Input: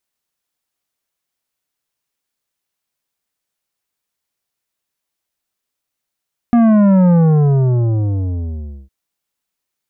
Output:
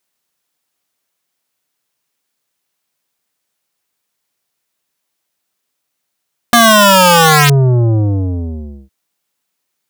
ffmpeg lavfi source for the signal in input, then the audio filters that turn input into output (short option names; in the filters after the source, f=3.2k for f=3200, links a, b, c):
-f lavfi -i "aevalsrc='0.376*clip((2.36-t)/1.79,0,1)*tanh(3.35*sin(2*PI*240*2.36/log(65/240)*(exp(log(65/240)*t/2.36)-1)))/tanh(3.35)':d=2.36:s=44100"
-filter_complex "[0:a]highpass=110,asplit=2[a][b];[b]alimiter=limit=-12dB:level=0:latency=1,volume=2dB[c];[a][c]amix=inputs=2:normalize=0,aeval=exprs='(mod(1.33*val(0)+1,2)-1)/1.33':c=same"